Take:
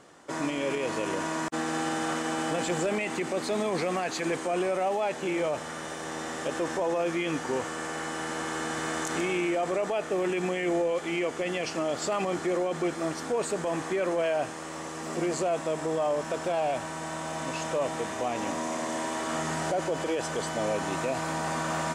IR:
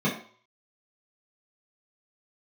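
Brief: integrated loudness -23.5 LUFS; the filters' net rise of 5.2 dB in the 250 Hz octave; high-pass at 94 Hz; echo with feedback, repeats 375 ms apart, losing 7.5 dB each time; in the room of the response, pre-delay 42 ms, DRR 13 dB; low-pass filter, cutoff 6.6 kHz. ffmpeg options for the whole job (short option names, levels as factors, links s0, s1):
-filter_complex "[0:a]highpass=94,lowpass=6600,equalizer=f=250:t=o:g=8,aecho=1:1:375|750|1125|1500|1875:0.422|0.177|0.0744|0.0312|0.0131,asplit=2[s0][s1];[1:a]atrim=start_sample=2205,adelay=42[s2];[s1][s2]afir=irnorm=-1:irlink=0,volume=0.0562[s3];[s0][s3]amix=inputs=2:normalize=0,volume=1.26"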